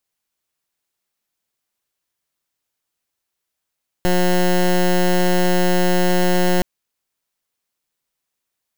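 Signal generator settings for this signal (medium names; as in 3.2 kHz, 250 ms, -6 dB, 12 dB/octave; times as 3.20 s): pulse 180 Hz, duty 15% -15 dBFS 2.57 s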